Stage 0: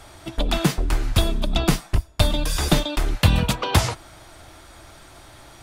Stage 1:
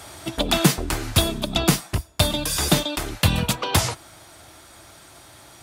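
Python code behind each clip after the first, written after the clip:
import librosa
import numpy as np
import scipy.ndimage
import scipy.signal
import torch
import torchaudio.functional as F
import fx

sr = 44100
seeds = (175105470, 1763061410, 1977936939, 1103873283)

y = scipy.signal.sosfilt(scipy.signal.butter(2, 80.0, 'highpass', fs=sr, output='sos'), x)
y = fx.high_shelf(y, sr, hz=5500.0, db=7.5)
y = fx.rider(y, sr, range_db=5, speed_s=2.0)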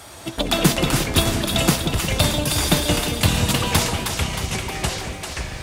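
y = fx.echo_split(x, sr, split_hz=870.0, low_ms=178, high_ms=313, feedback_pct=52, wet_db=-5.5)
y = fx.dmg_crackle(y, sr, seeds[0], per_s=120.0, level_db=-41.0)
y = fx.echo_pitch(y, sr, ms=118, semitones=-4, count=3, db_per_echo=-6.0)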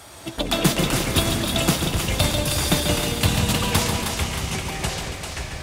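y = fx.echo_feedback(x, sr, ms=140, feedback_pct=55, wet_db=-7.5)
y = y * 10.0 ** (-2.5 / 20.0)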